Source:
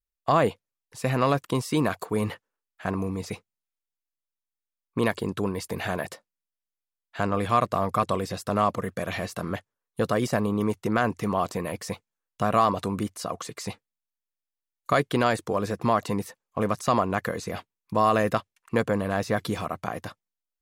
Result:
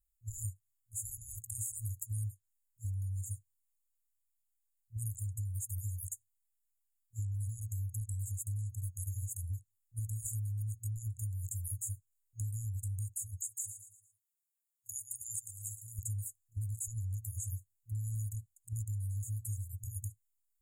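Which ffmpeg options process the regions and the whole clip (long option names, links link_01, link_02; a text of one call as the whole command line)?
ffmpeg -i in.wav -filter_complex "[0:a]asettb=1/sr,asplit=3[link_01][link_02][link_03];[link_01]atrim=end=13.464[link_04];[link_02]atrim=start=13.46:end=15.99,asetpts=PTS-STARTPTS,afade=type=in:duration=0.004:curve=qsin,afade=type=out:start_time=2.526:duration=0.004:curve=qsin,highpass=frequency=880:poles=1,aecho=1:1:114|228|342|456:0.224|0.0918|0.0376|0.0154,atrim=end_sample=111573[link_05];[link_03]atrim=start=15.986[link_06];[link_04][link_05]acrossfade=duration=0.004:curve1=hsin:curve2=qsin[link_07];[link_07][link_06]acrossfade=duration=0.004:curve1=qsin:curve2=hsin,afftfilt=real='re*(1-between(b*sr/4096,110,6600))':imag='im*(1-between(b*sr/4096,110,6600))':win_size=4096:overlap=0.75,acompressor=threshold=-44dB:ratio=6,volume=8.5dB" out.wav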